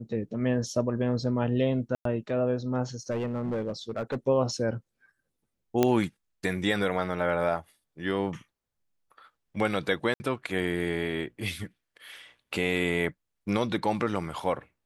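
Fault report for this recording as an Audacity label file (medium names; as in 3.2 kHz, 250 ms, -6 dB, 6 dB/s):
1.950000	2.050000	dropout 103 ms
3.100000	4.160000	clipped -26 dBFS
5.830000	5.830000	pop -9 dBFS
10.140000	10.200000	dropout 60 ms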